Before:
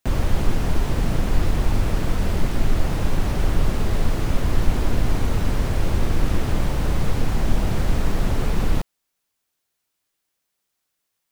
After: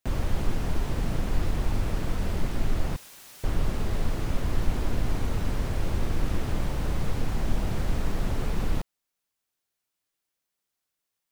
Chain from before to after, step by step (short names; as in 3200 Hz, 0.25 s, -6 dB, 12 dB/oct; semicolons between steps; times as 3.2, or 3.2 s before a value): 2.96–3.44 differentiator; gain -6.5 dB